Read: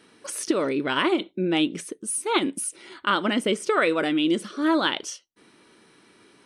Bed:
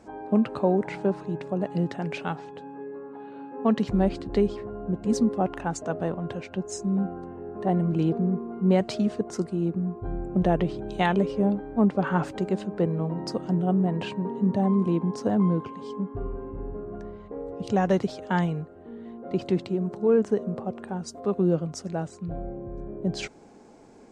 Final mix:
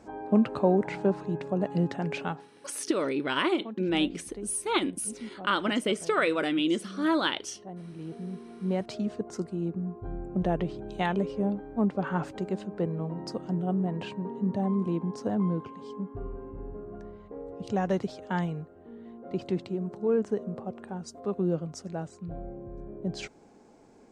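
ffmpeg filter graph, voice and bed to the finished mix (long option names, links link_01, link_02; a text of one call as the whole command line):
ffmpeg -i stem1.wav -i stem2.wav -filter_complex "[0:a]adelay=2400,volume=-4dB[link_01];[1:a]volume=12.5dB,afade=type=out:start_time=2.23:duration=0.26:silence=0.133352,afade=type=in:start_time=7.94:duration=1.32:silence=0.223872[link_02];[link_01][link_02]amix=inputs=2:normalize=0" out.wav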